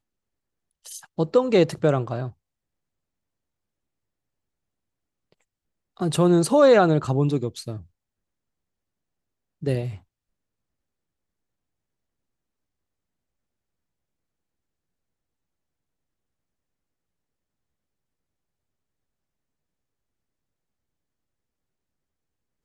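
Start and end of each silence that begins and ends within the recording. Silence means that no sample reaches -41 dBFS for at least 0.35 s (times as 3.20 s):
2.31–5.97 s
7.83–9.62 s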